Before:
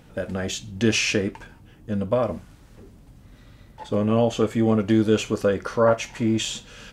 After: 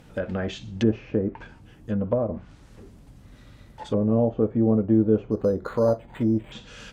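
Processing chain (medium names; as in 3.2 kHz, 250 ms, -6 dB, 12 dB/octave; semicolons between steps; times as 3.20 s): low-pass that closes with the level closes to 610 Hz, closed at -19.5 dBFS; 5.31–6.52 s: decimation joined by straight lines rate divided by 8×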